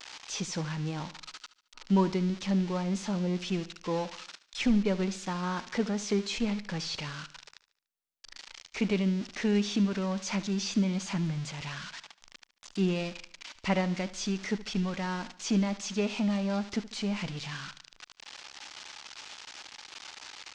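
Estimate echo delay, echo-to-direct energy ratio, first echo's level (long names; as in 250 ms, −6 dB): 73 ms, −15.5 dB, −16.5 dB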